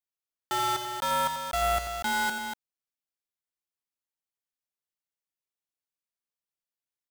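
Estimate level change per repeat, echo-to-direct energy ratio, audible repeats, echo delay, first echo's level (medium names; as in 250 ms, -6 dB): no regular repeats, -5.0 dB, 2, 86 ms, -9.5 dB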